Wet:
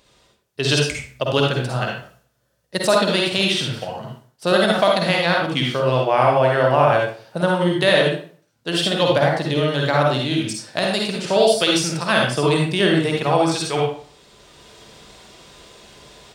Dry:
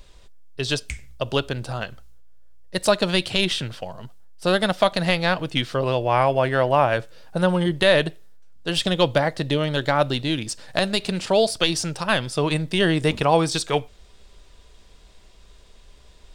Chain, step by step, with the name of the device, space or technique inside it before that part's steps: far laptop microphone (reverberation RT60 0.45 s, pre-delay 47 ms, DRR -1 dB; high-pass 140 Hz 12 dB/octave; level rider); trim -2.5 dB

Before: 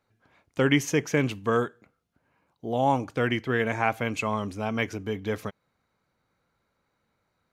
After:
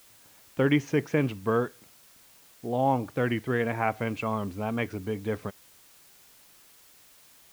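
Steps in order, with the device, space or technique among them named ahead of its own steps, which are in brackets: cassette deck with a dirty head (tape spacing loss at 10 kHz 22 dB; wow and flutter; white noise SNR 26 dB)

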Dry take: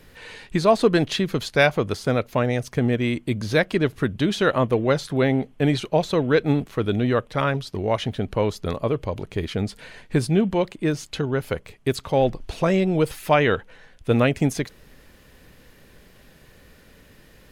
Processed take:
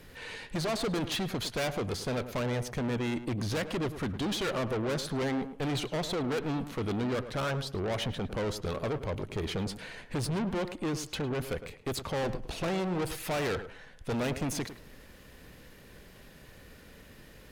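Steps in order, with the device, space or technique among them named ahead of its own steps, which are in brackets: rockabilly slapback (valve stage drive 29 dB, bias 0.4; tape echo 106 ms, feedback 23%, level -9 dB, low-pass 1.5 kHz)

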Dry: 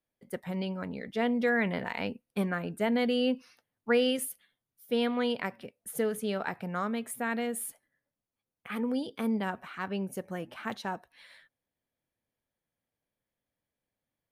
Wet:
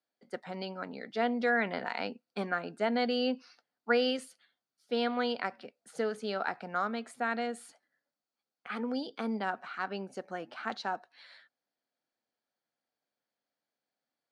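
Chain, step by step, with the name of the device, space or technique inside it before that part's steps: television speaker (cabinet simulation 170–7400 Hz, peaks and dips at 180 Hz -6 dB, 740 Hz +7 dB, 1.4 kHz +8 dB, 4.5 kHz +10 dB); trim -3 dB

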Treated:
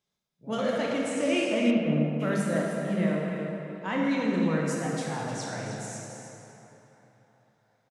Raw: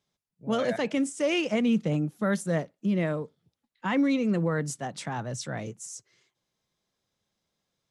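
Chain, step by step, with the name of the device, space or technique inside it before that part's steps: cave (delay 308 ms -10.5 dB; reverberation RT60 3.2 s, pre-delay 16 ms, DRR -3 dB); 1.70–2.19 s: low-pass 3.6 kHz -> 1.4 kHz 12 dB/octave; peaking EQ 110 Hz -3 dB 2.7 oct; feedback echo behind a band-pass 722 ms, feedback 42%, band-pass 1.2 kHz, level -20.5 dB; trim -4 dB

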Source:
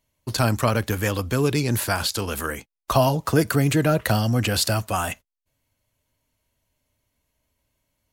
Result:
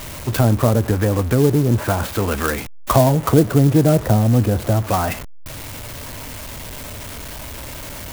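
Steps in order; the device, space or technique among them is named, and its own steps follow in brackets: low-pass that closes with the level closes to 700 Hz, closed at -18.5 dBFS; early CD player with a faulty converter (jump at every zero crossing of -31.5 dBFS; sampling jitter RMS 0.054 ms); trim +6 dB

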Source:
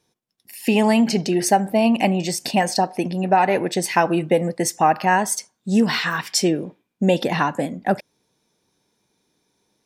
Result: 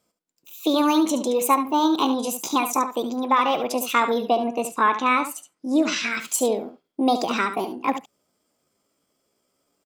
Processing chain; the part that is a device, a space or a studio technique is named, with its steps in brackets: 4.23–6.14 s: low-pass 5.2 kHz 12 dB/octave; chipmunk voice (pitch shift +5.5 st); delay 72 ms -10 dB; trim -3 dB

